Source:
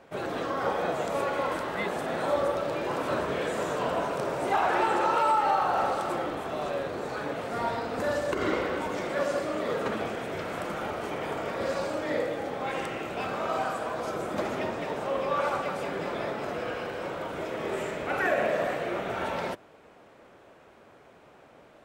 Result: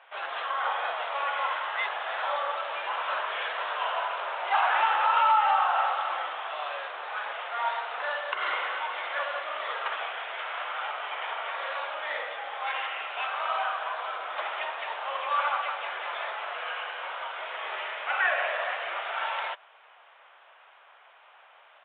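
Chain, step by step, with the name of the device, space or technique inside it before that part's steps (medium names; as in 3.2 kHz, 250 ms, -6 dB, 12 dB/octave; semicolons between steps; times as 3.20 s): musical greeting card (resampled via 8 kHz; high-pass 820 Hz 24 dB/octave; peaking EQ 3 kHz +4 dB 0.3 oct); trim +4 dB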